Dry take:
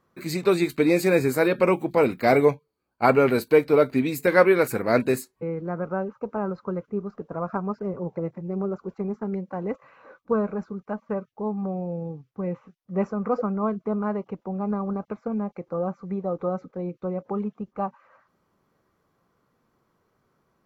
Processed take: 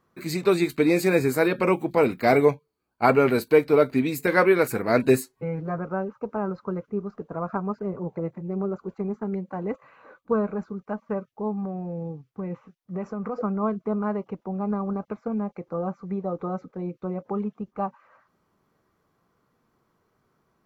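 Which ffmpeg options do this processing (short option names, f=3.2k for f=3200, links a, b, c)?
-filter_complex "[0:a]asettb=1/sr,asplit=3[a][b][c];[a]atrim=end=5.034[d];[b]atrim=start=5.03:end=5.79,asetpts=PTS-STARTPTS,afade=t=in:d=0.004:c=qsin,afade=t=out:st=0.756:d=0.004:c=qsin,aecho=1:1:7.4:0.89,atrim=end_sample=33516[e];[c]atrim=start=5.786[f];[d][e]acrossfade=d=0.004:c1=hsin:c2=qsin[g];[g][f]acrossfade=d=0.004:c1=qsin:c2=hsin,asettb=1/sr,asplit=3[h][i][j];[h]atrim=end=7.234[k];[i]atrim=start=7.23:end=10.65,asetpts=PTS-STARTPTS,afade=t=in:d=0.004:c=qsin,afade=t=out:st=3.416:d=0.004:c=qsin,bandreject=f=5.4k:w=8.3[l];[j]atrim=start=10.646[m];[k][l]acrossfade=d=0.004:c1=hsin:c2=qsin[n];[n][m]acrossfade=d=0.004:c1=qsin:c2=hsin,asettb=1/sr,asplit=3[o][p][q];[o]atrim=end=11.584[r];[p]atrim=start=11.58:end=13.41,asetpts=PTS-STARTPTS,afade=t=in:d=0.004:c=qsin,afade=t=out:st=1.826:d=0.004:c=qsin,acompressor=threshold=-26dB:ratio=6:attack=3.2:release=140:knee=1:detection=peak[s];[q]atrim=start=13.406[t];[r][s]acrossfade=d=0.004:c1=hsin:c2=qsin[u];[u][t]acrossfade=d=0.004:c1=qsin:c2=hsin,bandreject=f=540:w=16"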